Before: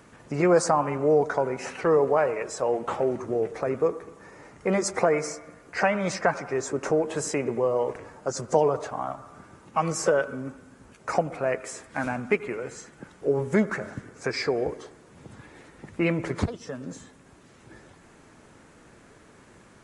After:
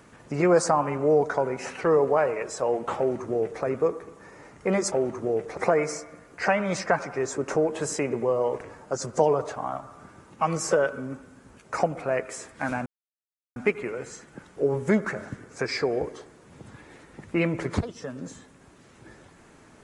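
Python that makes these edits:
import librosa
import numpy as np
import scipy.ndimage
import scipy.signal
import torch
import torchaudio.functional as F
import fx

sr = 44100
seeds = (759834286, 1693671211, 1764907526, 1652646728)

y = fx.edit(x, sr, fx.duplicate(start_s=2.98, length_s=0.65, to_s=4.92),
    fx.insert_silence(at_s=12.21, length_s=0.7), tone=tone)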